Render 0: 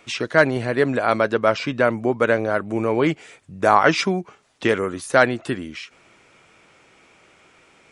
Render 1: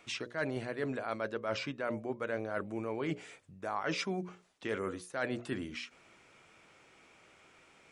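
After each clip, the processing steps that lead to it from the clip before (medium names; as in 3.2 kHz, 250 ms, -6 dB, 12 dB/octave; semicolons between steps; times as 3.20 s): hum notches 60/120/180/240/300/360/420/480/540/600 Hz; reverse; compression 6:1, threshold -25 dBFS, peak gain reduction 15 dB; reverse; trim -7.5 dB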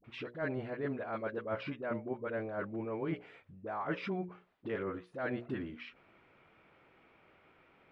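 distance through air 420 m; phase dispersion highs, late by 46 ms, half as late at 570 Hz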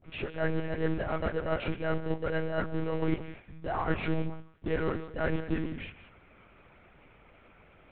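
in parallel at -9 dB: sample-and-hold 38×; on the sum: reverberation, pre-delay 3 ms, DRR 11.5 dB; monotone LPC vocoder at 8 kHz 160 Hz; trim +6 dB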